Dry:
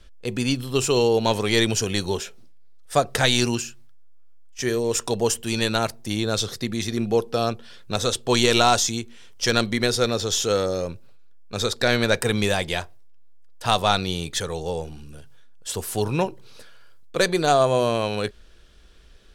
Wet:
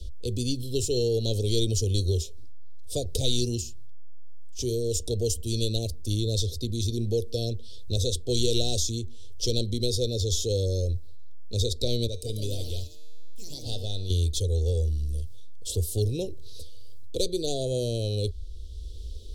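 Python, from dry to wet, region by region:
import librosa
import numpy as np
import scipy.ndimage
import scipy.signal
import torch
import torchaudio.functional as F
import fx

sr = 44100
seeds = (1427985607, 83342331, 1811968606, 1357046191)

y = fx.chain(x, sr, fx.echo_pitch(ms=173, semitones=4, count=3, db_per_echo=-6.0),
    fx.comb_fb(f0_hz=150.0, decay_s=1.3, harmonics='all', damping=0.0, mix_pct=70), at=(12.07, 14.1))
y = scipy.signal.sosfilt(scipy.signal.cheby1(3, 1.0, [490.0, 3700.0], 'bandstop', fs=sr, output='sos'), y)
y = fx.low_shelf_res(y, sr, hz=110.0, db=12.5, q=3.0)
y = fx.band_squash(y, sr, depth_pct=40)
y = F.gain(torch.from_numpy(y), -3.5).numpy()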